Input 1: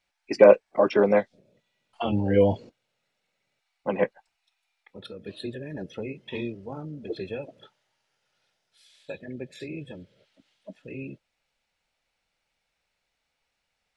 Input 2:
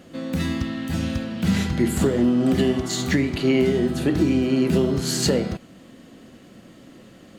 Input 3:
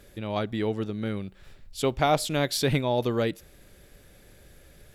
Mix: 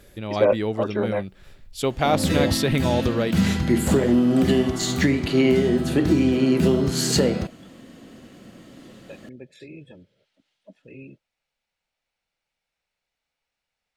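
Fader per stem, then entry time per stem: −5.0, +1.0, +2.0 decibels; 0.00, 1.90, 0.00 seconds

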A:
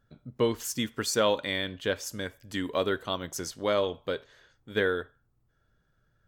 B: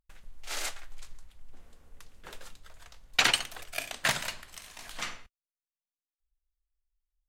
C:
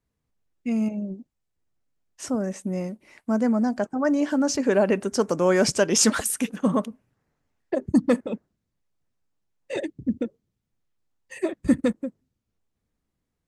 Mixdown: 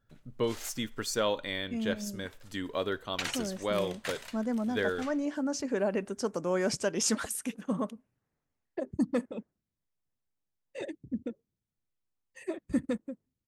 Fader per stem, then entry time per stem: −4.5, −11.5, −9.5 decibels; 0.00, 0.00, 1.05 seconds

